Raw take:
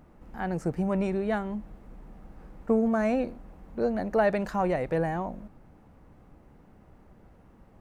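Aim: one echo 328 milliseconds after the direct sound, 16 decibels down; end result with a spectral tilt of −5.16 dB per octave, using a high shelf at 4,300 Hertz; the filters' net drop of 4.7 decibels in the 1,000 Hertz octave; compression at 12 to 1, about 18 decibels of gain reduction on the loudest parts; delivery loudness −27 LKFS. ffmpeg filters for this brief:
ffmpeg -i in.wav -af "equalizer=frequency=1000:width_type=o:gain=-7.5,highshelf=frequency=4300:gain=9,acompressor=threshold=-39dB:ratio=12,aecho=1:1:328:0.158,volume=17.5dB" out.wav

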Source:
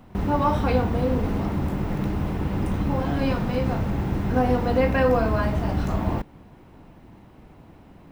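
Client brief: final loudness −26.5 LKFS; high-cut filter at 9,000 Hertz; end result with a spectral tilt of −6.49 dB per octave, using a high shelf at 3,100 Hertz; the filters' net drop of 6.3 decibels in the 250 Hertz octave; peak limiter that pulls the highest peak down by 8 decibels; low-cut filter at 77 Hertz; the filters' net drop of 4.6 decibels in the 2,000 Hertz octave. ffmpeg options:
ffmpeg -i in.wav -af "highpass=77,lowpass=9000,equalizer=frequency=250:width_type=o:gain=-8,equalizer=frequency=2000:width_type=o:gain=-8,highshelf=frequency=3100:gain=6,volume=3dB,alimiter=limit=-16.5dB:level=0:latency=1" out.wav

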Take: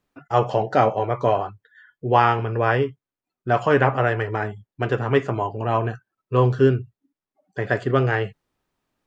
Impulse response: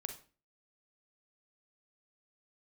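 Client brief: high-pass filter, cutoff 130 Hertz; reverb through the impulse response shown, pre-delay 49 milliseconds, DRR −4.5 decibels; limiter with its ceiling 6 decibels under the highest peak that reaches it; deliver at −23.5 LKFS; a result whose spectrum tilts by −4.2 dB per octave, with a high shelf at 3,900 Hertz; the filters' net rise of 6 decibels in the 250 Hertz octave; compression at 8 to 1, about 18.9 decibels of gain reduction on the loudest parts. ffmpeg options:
-filter_complex "[0:a]highpass=130,equalizer=frequency=250:width_type=o:gain=8,highshelf=frequency=3900:gain=-7,acompressor=threshold=-28dB:ratio=8,alimiter=limit=-22dB:level=0:latency=1,asplit=2[link_01][link_02];[1:a]atrim=start_sample=2205,adelay=49[link_03];[link_02][link_03]afir=irnorm=-1:irlink=0,volume=6.5dB[link_04];[link_01][link_04]amix=inputs=2:normalize=0,volume=5.5dB"

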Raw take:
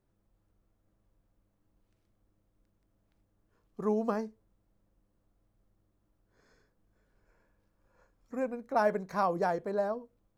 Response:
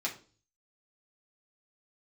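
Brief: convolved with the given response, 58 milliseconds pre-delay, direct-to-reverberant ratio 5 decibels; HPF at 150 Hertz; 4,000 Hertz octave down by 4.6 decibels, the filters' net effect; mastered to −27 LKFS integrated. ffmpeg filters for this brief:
-filter_complex "[0:a]highpass=150,equalizer=frequency=4000:width_type=o:gain=-6.5,asplit=2[link_01][link_02];[1:a]atrim=start_sample=2205,adelay=58[link_03];[link_02][link_03]afir=irnorm=-1:irlink=0,volume=-9.5dB[link_04];[link_01][link_04]amix=inputs=2:normalize=0,volume=5dB"

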